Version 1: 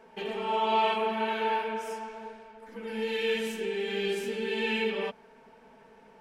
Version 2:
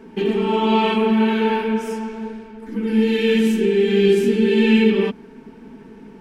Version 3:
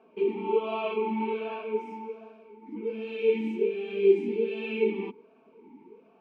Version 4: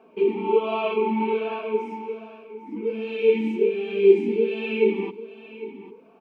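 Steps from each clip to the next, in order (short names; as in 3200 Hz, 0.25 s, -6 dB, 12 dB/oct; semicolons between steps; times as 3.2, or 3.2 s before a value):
resonant low shelf 430 Hz +10 dB, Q 3; gain +7.5 dB
vowel sweep a-u 1.3 Hz
echo 0.801 s -15.5 dB; gain +5.5 dB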